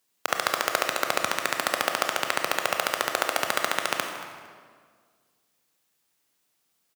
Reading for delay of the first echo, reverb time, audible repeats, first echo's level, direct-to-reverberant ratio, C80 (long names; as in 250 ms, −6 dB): 229 ms, 1.8 s, 1, −16.0 dB, 3.5 dB, 6.0 dB